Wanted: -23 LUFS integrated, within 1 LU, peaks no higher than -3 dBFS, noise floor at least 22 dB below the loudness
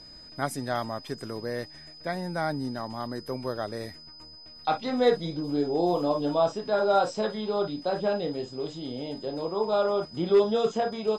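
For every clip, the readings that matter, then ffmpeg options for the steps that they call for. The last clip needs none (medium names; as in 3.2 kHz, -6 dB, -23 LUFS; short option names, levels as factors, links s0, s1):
steady tone 5 kHz; tone level -46 dBFS; loudness -28.5 LUFS; peak level -10.0 dBFS; loudness target -23.0 LUFS
-> -af "bandreject=f=5000:w=30"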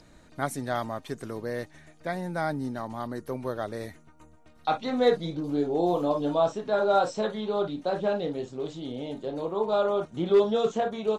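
steady tone not found; loudness -28.5 LUFS; peak level -10.0 dBFS; loudness target -23.0 LUFS
-> -af "volume=1.88"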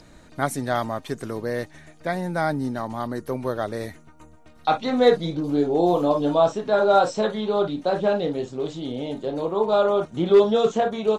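loudness -23.0 LUFS; peak level -4.5 dBFS; noise floor -50 dBFS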